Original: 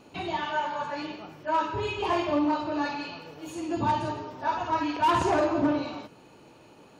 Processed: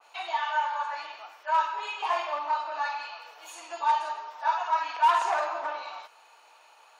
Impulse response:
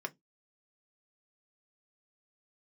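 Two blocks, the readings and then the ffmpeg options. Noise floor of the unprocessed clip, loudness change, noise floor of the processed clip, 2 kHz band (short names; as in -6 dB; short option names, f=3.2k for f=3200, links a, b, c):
-54 dBFS, -0.5 dB, -57 dBFS, +1.0 dB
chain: -filter_complex "[0:a]highpass=f=760:w=0.5412,highpass=f=760:w=1.3066,asplit=2[a][b];[1:a]atrim=start_sample=2205,asetrate=29106,aresample=44100[c];[b][c]afir=irnorm=-1:irlink=0,volume=-12.5dB[d];[a][d]amix=inputs=2:normalize=0,adynamicequalizer=threshold=0.00891:dfrequency=2200:dqfactor=0.7:tfrequency=2200:tqfactor=0.7:attack=5:release=100:ratio=0.375:range=2:mode=cutabove:tftype=highshelf"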